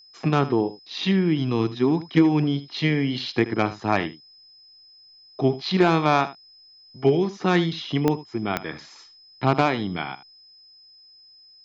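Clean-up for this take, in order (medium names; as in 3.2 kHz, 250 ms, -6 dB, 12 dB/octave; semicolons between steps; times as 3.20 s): de-click; band-stop 5.1 kHz, Q 30; inverse comb 78 ms -15.5 dB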